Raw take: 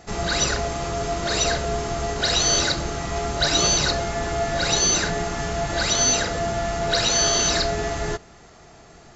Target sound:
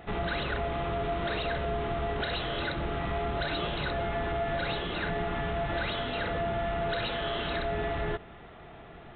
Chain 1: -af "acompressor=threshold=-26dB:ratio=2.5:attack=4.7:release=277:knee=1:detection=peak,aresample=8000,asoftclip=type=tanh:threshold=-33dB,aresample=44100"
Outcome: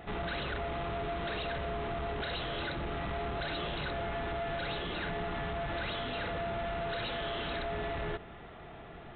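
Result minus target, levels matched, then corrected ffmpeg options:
soft clipping: distortion +10 dB
-af "acompressor=threshold=-26dB:ratio=2.5:attack=4.7:release=277:knee=1:detection=peak,aresample=8000,asoftclip=type=tanh:threshold=-23.5dB,aresample=44100"

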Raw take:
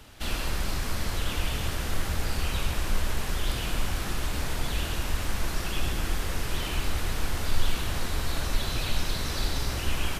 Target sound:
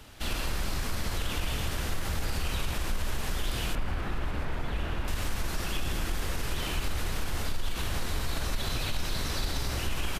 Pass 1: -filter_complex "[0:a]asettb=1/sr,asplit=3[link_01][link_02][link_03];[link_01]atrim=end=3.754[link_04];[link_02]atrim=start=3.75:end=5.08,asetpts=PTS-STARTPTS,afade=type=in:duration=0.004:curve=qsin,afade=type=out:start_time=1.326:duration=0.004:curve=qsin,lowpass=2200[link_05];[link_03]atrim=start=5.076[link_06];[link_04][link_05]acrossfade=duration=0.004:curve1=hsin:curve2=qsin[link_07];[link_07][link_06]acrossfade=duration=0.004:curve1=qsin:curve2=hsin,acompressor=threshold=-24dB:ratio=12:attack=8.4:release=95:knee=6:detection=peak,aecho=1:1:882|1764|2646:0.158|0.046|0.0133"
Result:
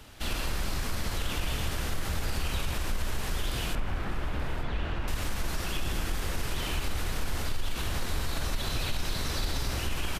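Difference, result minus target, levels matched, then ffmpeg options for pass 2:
echo 650 ms early
-filter_complex "[0:a]asettb=1/sr,asplit=3[link_01][link_02][link_03];[link_01]atrim=end=3.754[link_04];[link_02]atrim=start=3.75:end=5.08,asetpts=PTS-STARTPTS,afade=type=in:duration=0.004:curve=qsin,afade=type=out:start_time=1.326:duration=0.004:curve=qsin,lowpass=2200[link_05];[link_03]atrim=start=5.076[link_06];[link_04][link_05]acrossfade=duration=0.004:curve1=hsin:curve2=qsin[link_07];[link_07][link_06]acrossfade=duration=0.004:curve1=qsin:curve2=hsin,acompressor=threshold=-24dB:ratio=12:attack=8.4:release=95:knee=6:detection=peak,aecho=1:1:1532|3064|4596:0.158|0.046|0.0133"

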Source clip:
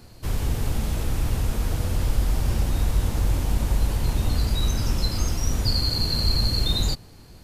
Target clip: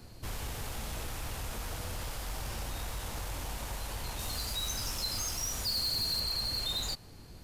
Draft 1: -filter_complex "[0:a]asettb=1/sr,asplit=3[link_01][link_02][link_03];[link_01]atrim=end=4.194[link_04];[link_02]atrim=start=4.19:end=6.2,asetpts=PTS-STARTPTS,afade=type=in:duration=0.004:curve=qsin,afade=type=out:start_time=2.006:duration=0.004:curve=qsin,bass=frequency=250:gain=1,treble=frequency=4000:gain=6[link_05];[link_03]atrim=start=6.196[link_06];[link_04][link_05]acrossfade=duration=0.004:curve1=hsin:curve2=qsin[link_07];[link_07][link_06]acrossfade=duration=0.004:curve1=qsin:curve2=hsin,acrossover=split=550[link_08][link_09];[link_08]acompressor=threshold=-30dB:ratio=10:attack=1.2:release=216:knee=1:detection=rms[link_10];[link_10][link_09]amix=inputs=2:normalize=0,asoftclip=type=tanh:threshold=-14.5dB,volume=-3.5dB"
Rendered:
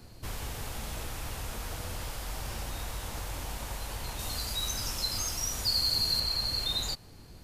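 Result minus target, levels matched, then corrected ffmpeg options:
soft clipping: distortion −13 dB
-filter_complex "[0:a]asettb=1/sr,asplit=3[link_01][link_02][link_03];[link_01]atrim=end=4.194[link_04];[link_02]atrim=start=4.19:end=6.2,asetpts=PTS-STARTPTS,afade=type=in:duration=0.004:curve=qsin,afade=type=out:start_time=2.006:duration=0.004:curve=qsin,bass=frequency=250:gain=1,treble=frequency=4000:gain=6[link_05];[link_03]atrim=start=6.196[link_06];[link_04][link_05]acrossfade=duration=0.004:curve1=hsin:curve2=qsin[link_07];[link_07][link_06]acrossfade=duration=0.004:curve1=qsin:curve2=hsin,acrossover=split=550[link_08][link_09];[link_08]acompressor=threshold=-30dB:ratio=10:attack=1.2:release=216:knee=1:detection=rms[link_10];[link_10][link_09]amix=inputs=2:normalize=0,asoftclip=type=tanh:threshold=-25dB,volume=-3.5dB"

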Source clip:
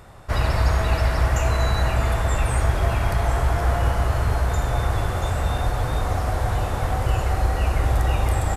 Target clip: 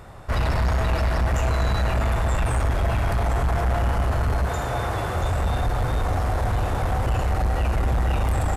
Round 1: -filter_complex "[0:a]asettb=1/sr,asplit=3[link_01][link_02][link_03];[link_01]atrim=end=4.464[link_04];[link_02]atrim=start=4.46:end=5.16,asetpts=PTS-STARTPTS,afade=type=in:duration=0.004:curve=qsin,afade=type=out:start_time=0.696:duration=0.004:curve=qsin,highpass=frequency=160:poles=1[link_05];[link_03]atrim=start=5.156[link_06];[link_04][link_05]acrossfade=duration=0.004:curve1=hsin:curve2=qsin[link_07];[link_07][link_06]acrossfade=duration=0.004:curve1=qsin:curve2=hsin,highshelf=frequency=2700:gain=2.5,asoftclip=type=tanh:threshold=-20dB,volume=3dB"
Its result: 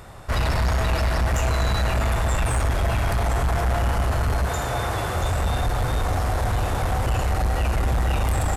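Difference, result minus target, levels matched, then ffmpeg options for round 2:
4,000 Hz band +3.5 dB
-filter_complex "[0:a]asettb=1/sr,asplit=3[link_01][link_02][link_03];[link_01]atrim=end=4.464[link_04];[link_02]atrim=start=4.46:end=5.16,asetpts=PTS-STARTPTS,afade=type=in:duration=0.004:curve=qsin,afade=type=out:start_time=0.696:duration=0.004:curve=qsin,highpass=frequency=160:poles=1[link_05];[link_03]atrim=start=5.156[link_06];[link_04][link_05]acrossfade=duration=0.004:curve1=hsin:curve2=qsin[link_07];[link_07][link_06]acrossfade=duration=0.004:curve1=qsin:curve2=hsin,highshelf=frequency=2700:gain=-4,asoftclip=type=tanh:threshold=-20dB,volume=3dB"

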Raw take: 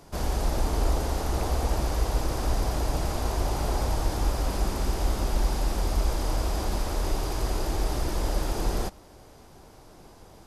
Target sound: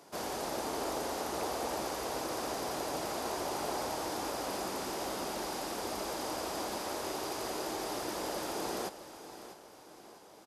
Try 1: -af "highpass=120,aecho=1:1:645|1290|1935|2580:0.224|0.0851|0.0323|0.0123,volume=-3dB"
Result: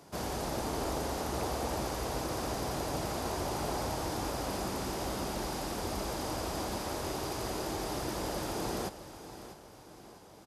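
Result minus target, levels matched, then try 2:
125 Hz band +11.0 dB
-af "highpass=290,aecho=1:1:645|1290|1935|2580:0.224|0.0851|0.0323|0.0123,volume=-3dB"

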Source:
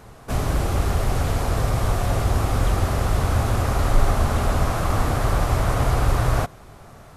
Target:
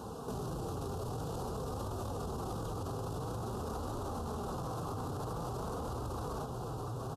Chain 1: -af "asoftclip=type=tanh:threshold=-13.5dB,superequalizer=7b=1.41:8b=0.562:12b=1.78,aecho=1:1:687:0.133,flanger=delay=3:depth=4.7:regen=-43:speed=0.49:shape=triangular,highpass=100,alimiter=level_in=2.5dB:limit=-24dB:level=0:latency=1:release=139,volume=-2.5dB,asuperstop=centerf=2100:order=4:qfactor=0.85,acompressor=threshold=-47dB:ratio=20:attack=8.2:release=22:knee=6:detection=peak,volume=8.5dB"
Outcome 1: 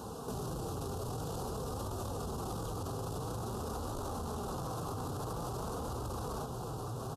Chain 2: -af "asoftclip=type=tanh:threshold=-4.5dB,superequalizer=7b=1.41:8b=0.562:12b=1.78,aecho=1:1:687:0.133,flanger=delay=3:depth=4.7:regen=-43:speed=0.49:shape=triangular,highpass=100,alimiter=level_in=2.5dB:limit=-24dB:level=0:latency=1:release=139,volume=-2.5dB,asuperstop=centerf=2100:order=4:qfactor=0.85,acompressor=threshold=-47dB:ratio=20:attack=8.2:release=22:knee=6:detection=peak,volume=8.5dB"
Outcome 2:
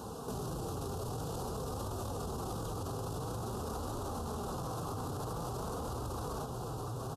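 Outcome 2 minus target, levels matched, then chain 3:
8,000 Hz band +4.0 dB
-af "asoftclip=type=tanh:threshold=-4.5dB,superequalizer=7b=1.41:8b=0.562:12b=1.78,aecho=1:1:687:0.133,flanger=delay=3:depth=4.7:regen=-43:speed=0.49:shape=triangular,highpass=100,highshelf=frequency=4100:gain=-5.5,alimiter=level_in=2.5dB:limit=-24dB:level=0:latency=1:release=139,volume=-2.5dB,asuperstop=centerf=2100:order=4:qfactor=0.85,acompressor=threshold=-47dB:ratio=20:attack=8.2:release=22:knee=6:detection=peak,volume=8.5dB"

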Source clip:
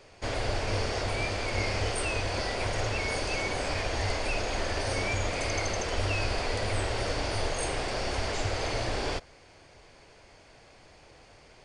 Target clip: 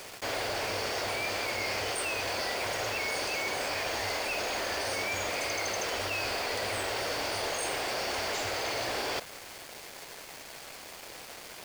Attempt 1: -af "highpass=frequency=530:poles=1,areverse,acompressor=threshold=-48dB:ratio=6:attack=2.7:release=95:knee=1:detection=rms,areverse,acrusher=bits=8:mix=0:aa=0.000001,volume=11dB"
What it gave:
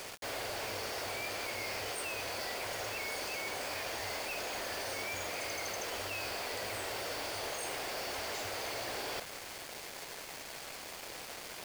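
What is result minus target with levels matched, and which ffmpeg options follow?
downward compressor: peak gain reduction +6.5 dB
-af "highpass=frequency=530:poles=1,areverse,acompressor=threshold=-40dB:ratio=6:attack=2.7:release=95:knee=1:detection=rms,areverse,acrusher=bits=8:mix=0:aa=0.000001,volume=11dB"

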